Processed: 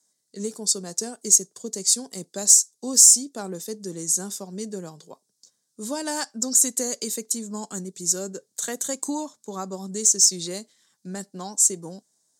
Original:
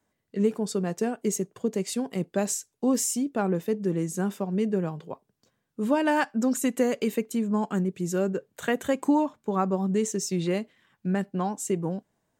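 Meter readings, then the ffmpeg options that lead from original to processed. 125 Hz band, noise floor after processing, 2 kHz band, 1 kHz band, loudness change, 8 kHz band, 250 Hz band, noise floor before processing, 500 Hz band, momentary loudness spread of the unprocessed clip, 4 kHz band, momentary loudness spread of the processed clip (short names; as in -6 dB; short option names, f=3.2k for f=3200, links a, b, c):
-9.0 dB, -74 dBFS, -7.0 dB, -6.5 dB, +7.5 dB, +17.0 dB, -7.5 dB, -78 dBFS, -6.5 dB, 7 LU, +12.0 dB, 19 LU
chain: -af "highpass=170,lowpass=7.6k,aexciter=amount=11.4:drive=8.6:freq=4.2k,volume=-6.5dB"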